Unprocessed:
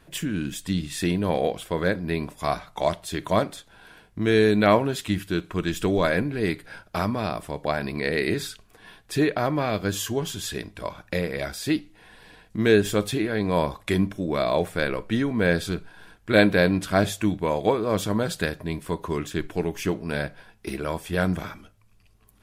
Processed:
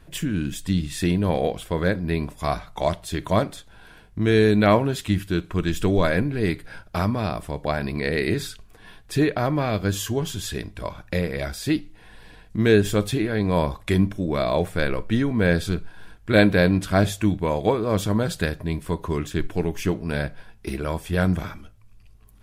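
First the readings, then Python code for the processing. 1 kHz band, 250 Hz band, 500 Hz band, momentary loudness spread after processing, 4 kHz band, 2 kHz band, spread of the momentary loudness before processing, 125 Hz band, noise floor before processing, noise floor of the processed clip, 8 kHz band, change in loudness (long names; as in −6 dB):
0.0 dB, +2.0 dB, +0.5 dB, 11 LU, 0.0 dB, 0.0 dB, 12 LU, +5.0 dB, −58 dBFS, −50 dBFS, 0.0 dB, +1.5 dB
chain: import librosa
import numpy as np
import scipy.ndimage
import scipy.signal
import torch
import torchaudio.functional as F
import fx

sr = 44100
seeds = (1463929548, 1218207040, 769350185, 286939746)

y = fx.low_shelf(x, sr, hz=110.0, db=11.5)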